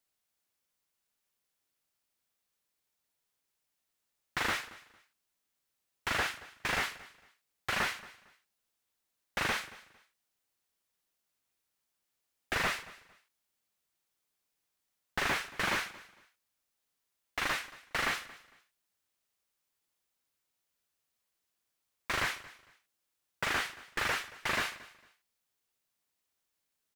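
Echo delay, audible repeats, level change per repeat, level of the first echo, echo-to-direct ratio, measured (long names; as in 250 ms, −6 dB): 227 ms, 2, −12.0 dB, −19.5 dB, −19.0 dB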